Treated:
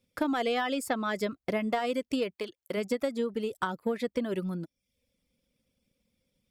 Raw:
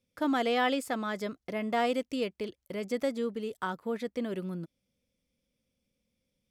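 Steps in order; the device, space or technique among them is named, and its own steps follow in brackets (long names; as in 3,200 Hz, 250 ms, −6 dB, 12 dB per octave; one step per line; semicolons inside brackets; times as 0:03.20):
drum-bus smash (transient designer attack +5 dB, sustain +1 dB; downward compressor 10 to 1, threshold −28 dBFS, peak gain reduction 8 dB; soft clipping −21.5 dBFS, distortion −24 dB)
reverb reduction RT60 0.54 s
0:02.34–0:02.76: high-pass filter 720 Hz → 320 Hz 6 dB per octave
notch filter 6,100 Hz, Q 14
level +4.5 dB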